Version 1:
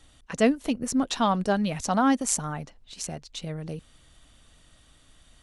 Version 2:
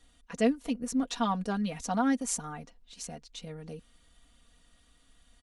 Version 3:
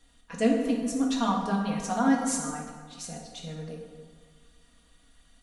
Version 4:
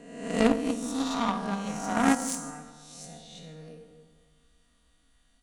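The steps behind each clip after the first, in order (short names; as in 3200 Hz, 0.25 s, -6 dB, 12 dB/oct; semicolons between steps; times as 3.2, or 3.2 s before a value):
comb 4.2 ms, depth 75%; gain -8.5 dB
plate-style reverb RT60 1.6 s, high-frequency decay 0.6×, DRR 0 dB
spectral swells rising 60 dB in 1.10 s; added harmonics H 3 -12 dB, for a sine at -9.5 dBFS; gain +3.5 dB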